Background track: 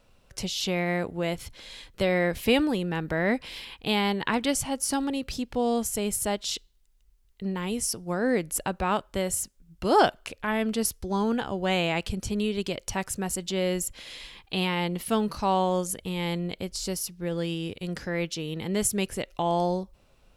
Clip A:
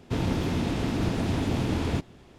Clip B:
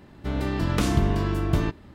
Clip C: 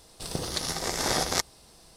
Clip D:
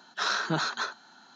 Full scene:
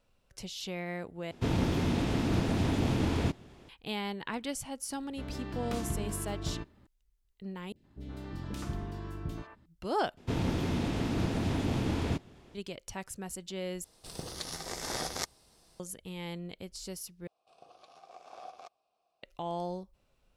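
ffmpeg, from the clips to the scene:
ffmpeg -i bed.wav -i cue0.wav -i cue1.wav -i cue2.wav -filter_complex "[1:a]asplit=2[link_01][link_02];[2:a]asplit=2[link_03][link_04];[3:a]asplit=2[link_05][link_06];[0:a]volume=-10.5dB[link_07];[link_04]acrossover=split=530|2300[link_08][link_09][link_10];[link_10]adelay=40[link_11];[link_09]adelay=120[link_12];[link_08][link_12][link_11]amix=inputs=3:normalize=0[link_13];[link_06]asplit=3[link_14][link_15][link_16];[link_14]bandpass=frequency=730:width_type=q:width=8,volume=0dB[link_17];[link_15]bandpass=frequency=1090:width_type=q:width=8,volume=-6dB[link_18];[link_16]bandpass=frequency=2440:width_type=q:width=8,volume=-9dB[link_19];[link_17][link_18][link_19]amix=inputs=3:normalize=0[link_20];[link_07]asplit=6[link_21][link_22][link_23][link_24][link_25][link_26];[link_21]atrim=end=1.314[link_27];[link_01]atrim=end=2.38,asetpts=PTS-STARTPTS,volume=-2dB[link_28];[link_22]atrim=start=3.686:end=7.724[link_29];[link_13]atrim=end=1.94,asetpts=PTS-STARTPTS,volume=-15dB[link_30];[link_23]atrim=start=9.656:end=10.174[link_31];[link_02]atrim=end=2.38,asetpts=PTS-STARTPTS,volume=-4dB[link_32];[link_24]atrim=start=12.546:end=13.844[link_33];[link_05]atrim=end=1.96,asetpts=PTS-STARTPTS,volume=-9dB[link_34];[link_25]atrim=start=15.796:end=17.274[link_35];[link_20]atrim=end=1.96,asetpts=PTS-STARTPTS,volume=-10.5dB[link_36];[link_26]atrim=start=19.226[link_37];[link_03]atrim=end=1.94,asetpts=PTS-STARTPTS,volume=-13.5dB,afade=type=in:duration=0.004:curve=hsin,afade=type=out:start_time=1.936:duration=0.004:curve=hsin,adelay=217413S[link_38];[link_27][link_28]acrossfade=duration=0.004:curve1=hsin:curve2=hsin[link_39];[link_39][link_29]acrossfade=duration=0.004:curve1=hsin:curve2=hsin[link_40];[link_40][link_30]acrossfade=duration=0.004:curve1=hsin:curve2=hsin[link_41];[link_41][link_31]acrossfade=duration=0.004:curve1=hsin:curve2=hsin[link_42];[link_42][link_32]acrossfade=duration=0.004:curve1=hsin:curve2=hsin[link_43];[link_43][link_33]acrossfade=duration=0.004:curve1=hsin:curve2=hsin[link_44];[link_44][link_34]acrossfade=duration=0.004:curve1=hsin:curve2=hsin[link_45];[link_45][link_35]acrossfade=duration=0.004:curve1=hsin:curve2=hsin[link_46];[link_46][link_36]acrossfade=duration=0.004:curve1=hsin:curve2=hsin[link_47];[link_47][link_37]acrossfade=duration=0.004:curve1=hsin:curve2=hsin[link_48];[link_48][link_38]amix=inputs=2:normalize=0" out.wav

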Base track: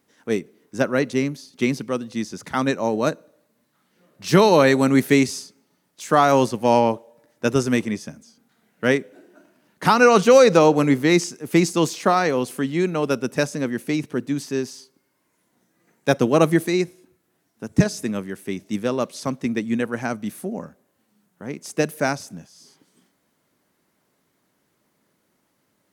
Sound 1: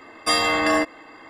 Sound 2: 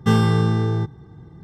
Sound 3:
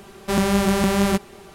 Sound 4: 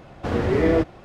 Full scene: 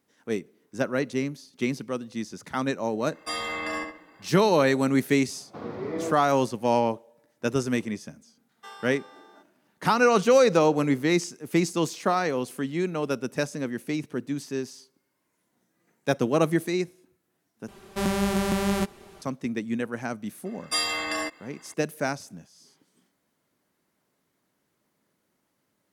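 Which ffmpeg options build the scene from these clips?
ffmpeg -i bed.wav -i cue0.wav -i cue1.wav -i cue2.wav -i cue3.wav -filter_complex "[1:a]asplit=2[link_01][link_02];[0:a]volume=-6dB[link_03];[link_01]asplit=2[link_04][link_05];[link_05]adelay=68,lowpass=frequency=4000:poles=1,volume=-5dB,asplit=2[link_06][link_07];[link_07]adelay=68,lowpass=frequency=4000:poles=1,volume=0.34,asplit=2[link_08][link_09];[link_09]adelay=68,lowpass=frequency=4000:poles=1,volume=0.34,asplit=2[link_10][link_11];[link_11]adelay=68,lowpass=frequency=4000:poles=1,volume=0.34[link_12];[link_04][link_06][link_08][link_10][link_12]amix=inputs=5:normalize=0[link_13];[4:a]highpass=frequency=130:width=0.5412,highpass=frequency=130:width=1.3066,equalizer=frequency=1100:width_type=q:width=4:gain=4,equalizer=frequency=1700:width_type=q:width=4:gain=-6,equalizer=frequency=2900:width_type=q:width=4:gain=-8,lowpass=frequency=5500:width=0.5412,lowpass=frequency=5500:width=1.3066[link_14];[2:a]highpass=frequency=620:width=0.5412,highpass=frequency=620:width=1.3066[link_15];[link_02]highshelf=frequency=2200:gain=11.5[link_16];[link_03]asplit=2[link_17][link_18];[link_17]atrim=end=17.684[link_19];[3:a]atrim=end=1.54,asetpts=PTS-STARTPTS,volume=-6dB[link_20];[link_18]atrim=start=19.216[link_21];[link_13]atrim=end=1.29,asetpts=PTS-STARTPTS,volume=-12dB,afade=type=in:duration=0.004:curve=hsin,afade=type=out:start_time=1.286:duration=0.004:curve=hsin,adelay=3000[link_22];[link_14]atrim=end=1.04,asetpts=PTS-STARTPTS,volume=-12dB,afade=type=in:duration=0.004:curve=hsin,afade=type=out:start_time=1.036:duration=0.004:curve=hsin,adelay=5300[link_23];[link_15]atrim=end=1.43,asetpts=PTS-STARTPTS,volume=-18dB,afade=type=in:duration=0.004:curve=hsin,afade=type=out:start_time=1.426:duration=0.004:curve=hsin,adelay=8570[link_24];[link_16]atrim=end=1.29,asetpts=PTS-STARTPTS,volume=-13dB,afade=type=in:duration=0.004:curve=hsin,afade=type=out:start_time=1.286:duration=0.004:curve=hsin,adelay=20450[link_25];[link_19][link_20]acrossfade=duration=0.004:curve1=hsin:curve2=hsin[link_26];[link_26][link_21]acrossfade=duration=0.004:curve1=hsin:curve2=hsin[link_27];[link_27][link_22][link_23][link_24][link_25]amix=inputs=5:normalize=0" out.wav

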